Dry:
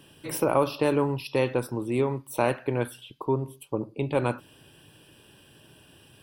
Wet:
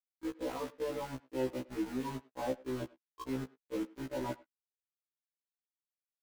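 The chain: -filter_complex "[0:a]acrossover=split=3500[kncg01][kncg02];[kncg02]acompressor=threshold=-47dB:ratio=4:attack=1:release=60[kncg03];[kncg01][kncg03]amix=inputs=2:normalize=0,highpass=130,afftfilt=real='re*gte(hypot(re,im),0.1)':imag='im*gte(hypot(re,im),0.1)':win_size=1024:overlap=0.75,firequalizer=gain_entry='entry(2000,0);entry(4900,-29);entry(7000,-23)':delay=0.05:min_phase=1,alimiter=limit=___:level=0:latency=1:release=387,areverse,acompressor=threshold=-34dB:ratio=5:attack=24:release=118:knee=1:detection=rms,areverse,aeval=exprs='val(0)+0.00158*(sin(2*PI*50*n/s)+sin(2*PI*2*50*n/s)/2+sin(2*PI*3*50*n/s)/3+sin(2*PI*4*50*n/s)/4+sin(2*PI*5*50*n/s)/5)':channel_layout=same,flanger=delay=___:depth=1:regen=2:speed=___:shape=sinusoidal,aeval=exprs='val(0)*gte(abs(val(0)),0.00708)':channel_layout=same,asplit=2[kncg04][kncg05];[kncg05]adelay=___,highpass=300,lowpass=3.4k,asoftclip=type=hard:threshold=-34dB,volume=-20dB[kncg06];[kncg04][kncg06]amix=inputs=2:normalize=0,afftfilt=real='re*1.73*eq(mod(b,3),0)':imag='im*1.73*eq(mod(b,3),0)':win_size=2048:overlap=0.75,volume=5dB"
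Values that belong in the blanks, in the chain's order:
-15.5dB, 3.2, 0.7, 100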